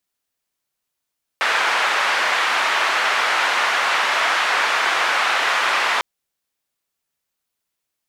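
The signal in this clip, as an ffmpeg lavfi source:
ffmpeg -f lavfi -i "anoisesrc=color=white:duration=4.6:sample_rate=44100:seed=1,highpass=frequency=970,lowpass=frequency=1700,volume=-0.3dB" out.wav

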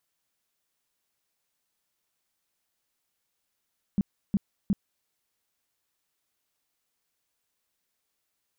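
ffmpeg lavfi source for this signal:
ffmpeg -f lavfi -i "aevalsrc='0.106*sin(2*PI*200*mod(t,0.36))*lt(mod(t,0.36),6/200)':duration=1.08:sample_rate=44100" out.wav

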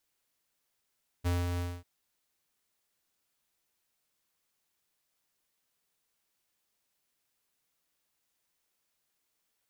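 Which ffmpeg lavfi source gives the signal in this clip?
ffmpeg -f lavfi -i "aevalsrc='0.0398*(2*lt(mod(87.9*t,1),0.5)-1)':duration=0.594:sample_rate=44100,afade=type=in:duration=0.026,afade=type=out:start_time=0.026:duration=0.203:silence=0.596,afade=type=out:start_time=0.35:duration=0.244" out.wav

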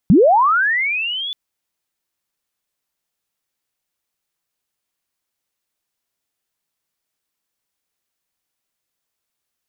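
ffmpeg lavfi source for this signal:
ffmpeg -f lavfi -i "aevalsrc='pow(10,(-6-17*t/1.23)/20)*sin(2*PI*(150*t+3350*t*t/(2*1.23)))':duration=1.23:sample_rate=44100" out.wav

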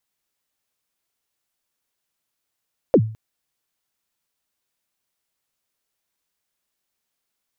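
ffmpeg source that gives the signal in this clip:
ffmpeg -f lavfi -i "aevalsrc='0.473*pow(10,-3*t/0.42)*sin(2*PI*(600*0.065/log(110/600)*(exp(log(110/600)*min(t,0.065)/0.065)-1)+110*max(t-0.065,0)))':duration=0.21:sample_rate=44100" out.wav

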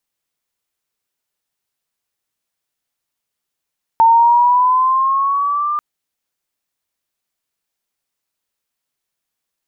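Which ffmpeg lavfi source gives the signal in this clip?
ffmpeg -f lavfi -i "aevalsrc='pow(10,(-6-10*t/1.79)/20)*sin(2*PI*902*1.79/(5*log(2)/12)*(exp(5*log(2)/12*t/1.79)-1))':duration=1.79:sample_rate=44100" out.wav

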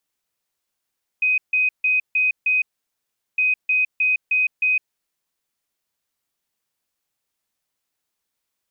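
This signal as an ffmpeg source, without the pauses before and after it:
ffmpeg -f lavfi -i "aevalsrc='0.168*sin(2*PI*2510*t)*clip(min(mod(mod(t,2.16),0.31),0.16-mod(mod(t,2.16),0.31))/0.005,0,1)*lt(mod(t,2.16),1.55)':duration=4.32:sample_rate=44100" out.wav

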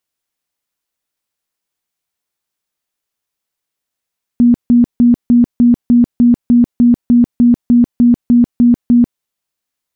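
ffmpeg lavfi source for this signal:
ffmpeg -f lavfi -i "aevalsrc='0.596*sin(2*PI*240*mod(t,0.3))*lt(mod(t,0.3),34/240)':duration=4.8:sample_rate=44100" out.wav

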